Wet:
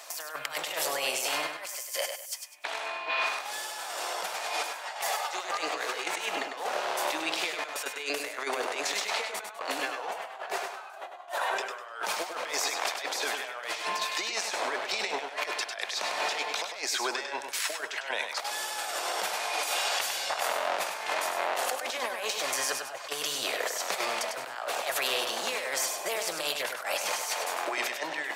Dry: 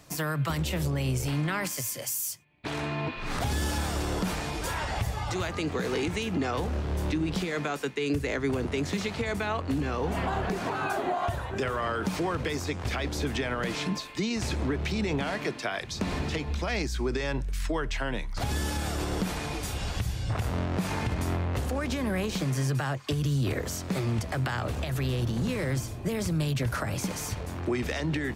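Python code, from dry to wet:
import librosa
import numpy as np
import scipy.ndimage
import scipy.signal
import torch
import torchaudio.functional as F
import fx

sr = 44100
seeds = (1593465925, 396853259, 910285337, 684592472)

y = scipy.signal.sosfilt(scipy.signal.cheby1(3, 1.0, 640.0, 'highpass', fs=sr, output='sos'), x)
y = fx.over_compress(y, sr, threshold_db=-40.0, ratio=-0.5)
y = fx.echo_feedback(y, sr, ms=100, feedback_pct=28, wet_db=-6.5)
y = F.gain(torch.from_numpy(y), 7.0).numpy()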